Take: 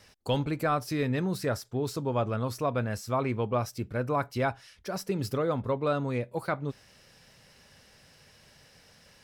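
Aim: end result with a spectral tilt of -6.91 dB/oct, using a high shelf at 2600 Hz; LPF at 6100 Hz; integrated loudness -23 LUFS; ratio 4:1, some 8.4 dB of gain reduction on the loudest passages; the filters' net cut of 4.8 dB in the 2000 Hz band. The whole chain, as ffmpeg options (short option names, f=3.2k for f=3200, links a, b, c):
-af "lowpass=6.1k,equalizer=f=2k:t=o:g=-5,highshelf=f=2.6k:g=-4,acompressor=threshold=-34dB:ratio=4,volume=15.5dB"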